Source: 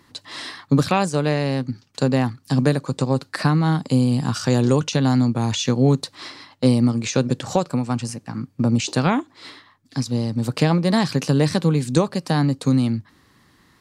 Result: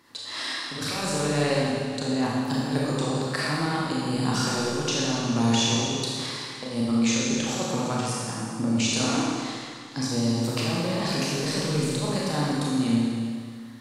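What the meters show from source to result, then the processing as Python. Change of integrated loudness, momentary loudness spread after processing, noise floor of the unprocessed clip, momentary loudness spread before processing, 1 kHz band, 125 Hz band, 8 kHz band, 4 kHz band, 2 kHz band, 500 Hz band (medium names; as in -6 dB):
-5.5 dB, 8 LU, -58 dBFS, 11 LU, -3.5 dB, -9.0 dB, +3.0 dB, +2.0 dB, -1.0 dB, -5.5 dB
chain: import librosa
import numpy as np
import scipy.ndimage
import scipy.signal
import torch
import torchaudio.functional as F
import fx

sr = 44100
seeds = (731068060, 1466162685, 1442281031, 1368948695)

y = fx.low_shelf(x, sr, hz=220.0, db=-10.0)
y = fx.over_compress(y, sr, threshold_db=-24.0, ratio=-0.5)
y = fx.rev_schroeder(y, sr, rt60_s=2.1, comb_ms=27, drr_db=-5.5)
y = y * librosa.db_to_amplitude(-5.5)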